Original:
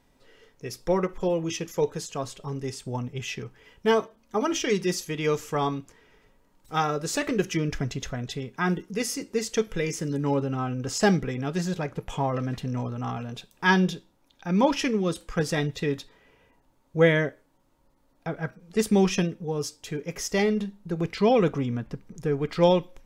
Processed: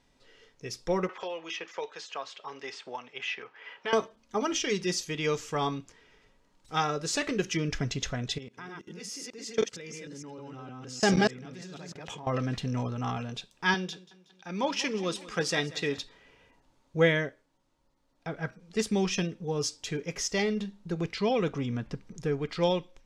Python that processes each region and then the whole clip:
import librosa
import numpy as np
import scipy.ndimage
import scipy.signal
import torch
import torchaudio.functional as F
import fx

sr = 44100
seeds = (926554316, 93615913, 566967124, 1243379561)

y = fx.chain(x, sr, fx.bandpass_edges(low_hz=760.0, high_hz=3000.0),
    fx.band_squash(depth_pct=70), at=(1.09, 3.93))
y = fx.chain(y, sr, fx.reverse_delay(ms=154, wet_db=-1.0),
    fx.highpass(hz=130.0, slope=12),
    fx.level_steps(step_db=21), at=(8.38, 12.27))
y = fx.chain(y, sr, fx.highpass(hz=330.0, slope=6),
    fx.echo_feedback(ms=185, feedback_pct=52, wet_db=-19.0), at=(13.74, 15.98))
y = scipy.signal.sosfilt(scipy.signal.butter(2, 5700.0, 'lowpass', fs=sr, output='sos'), y)
y = fx.rider(y, sr, range_db=3, speed_s=0.5)
y = fx.high_shelf(y, sr, hz=3000.0, db=10.5)
y = y * librosa.db_to_amplitude(-4.5)